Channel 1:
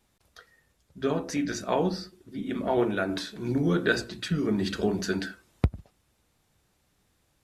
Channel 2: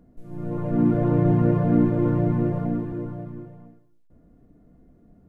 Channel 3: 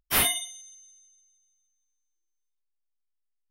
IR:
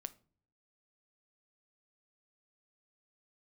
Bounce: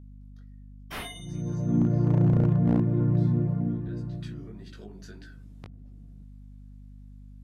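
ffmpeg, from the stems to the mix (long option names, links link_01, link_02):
-filter_complex "[0:a]acompressor=threshold=-36dB:ratio=4,flanger=delay=17.5:depth=3.7:speed=1.7,volume=-7dB,afade=type=in:start_time=3.88:duration=0.49:silence=0.334965[link_01];[1:a]highpass=89,bass=frequency=250:gain=15,treble=frequency=4000:gain=0,aeval=exprs='0.75*(abs(mod(val(0)/0.75+3,4)-2)-1)':channel_layout=same,adelay=950,volume=-12dB[link_02];[2:a]aemphasis=mode=reproduction:type=75fm,acompressor=threshold=-53dB:ratio=1.5,adelay=800,volume=0.5dB[link_03];[link_01][link_02][link_03]amix=inputs=3:normalize=0,aeval=exprs='val(0)+0.00562*(sin(2*PI*50*n/s)+sin(2*PI*2*50*n/s)/2+sin(2*PI*3*50*n/s)/3+sin(2*PI*4*50*n/s)/4+sin(2*PI*5*50*n/s)/5)':channel_layout=same"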